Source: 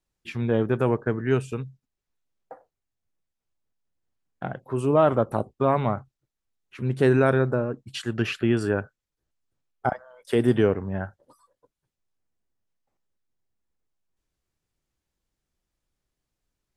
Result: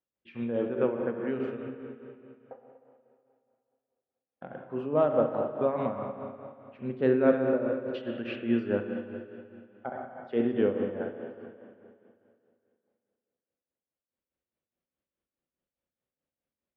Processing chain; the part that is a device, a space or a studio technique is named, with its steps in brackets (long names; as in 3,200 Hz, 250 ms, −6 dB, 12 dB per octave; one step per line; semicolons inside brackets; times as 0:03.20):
combo amplifier with spring reverb and tremolo (spring reverb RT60 2.5 s, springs 34/39/60 ms, chirp 65 ms, DRR 2 dB; amplitude tremolo 4.8 Hz, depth 58%; loudspeaker in its box 92–3,500 Hz, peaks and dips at 120 Hz −8 dB, 250 Hz +6 dB, 530 Hz +10 dB)
level −8.5 dB